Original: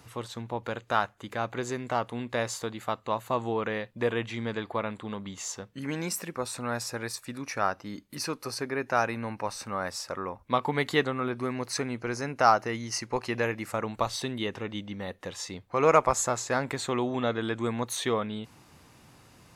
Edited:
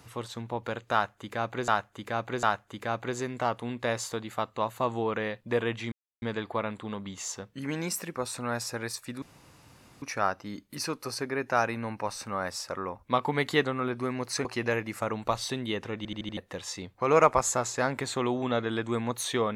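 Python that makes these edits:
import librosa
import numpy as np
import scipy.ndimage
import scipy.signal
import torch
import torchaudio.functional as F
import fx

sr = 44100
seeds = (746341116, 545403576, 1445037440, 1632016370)

y = fx.edit(x, sr, fx.repeat(start_s=0.93, length_s=0.75, count=3),
    fx.insert_silence(at_s=4.42, length_s=0.3),
    fx.insert_room_tone(at_s=7.42, length_s=0.8),
    fx.cut(start_s=11.85, length_s=1.32),
    fx.stutter_over(start_s=14.69, slice_s=0.08, count=5), tone=tone)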